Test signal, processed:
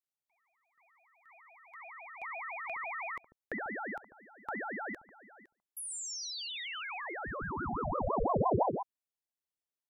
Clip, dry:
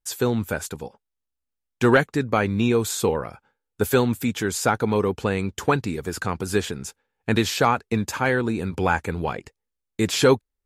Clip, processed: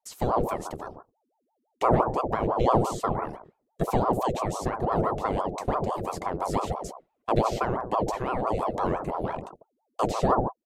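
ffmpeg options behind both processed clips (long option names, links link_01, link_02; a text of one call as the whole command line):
ffmpeg -i in.wav -filter_complex "[0:a]acrossover=split=8700[link_01][link_02];[link_02]acompressor=threshold=-41dB:ratio=4:attack=1:release=60[link_03];[link_01][link_03]amix=inputs=2:normalize=0,bass=frequency=250:gain=7,treble=frequency=4000:gain=2,acrossover=split=560[link_04][link_05];[link_04]aecho=1:1:67.06|142.9:0.501|0.501[link_06];[link_05]acompressor=threshold=-32dB:ratio=6[link_07];[link_06][link_07]amix=inputs=2:normalize=0,aeval=exprs='val(0)*sin(2*PI*570*n/s+570*0.6/5.9*sin(2*PI*5.9*n/s))':channel_layout=same,volume=-4.5dB" out.wav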